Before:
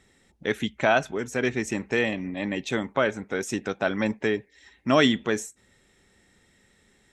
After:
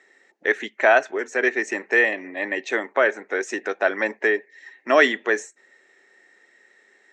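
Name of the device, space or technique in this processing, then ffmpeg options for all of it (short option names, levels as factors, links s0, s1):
phone speaker on a table: -af "highpass=f=340:w=0.5412,highpass=f=340:w=1.3066,equalizer=f=380:t=q:w=4:g=3,equalizer=f=660:t=q:w=4:g=3,equalizer=f=1800:t=q:w=4:g=10,equalizer=f=3400:t=q:w=4:g=-7,equalizer=f=5100:t=q:w=4:g=-4,lowpass=f=6800:w=0.5412,lowpass=f=6800:w=1.3066,volume=1.33"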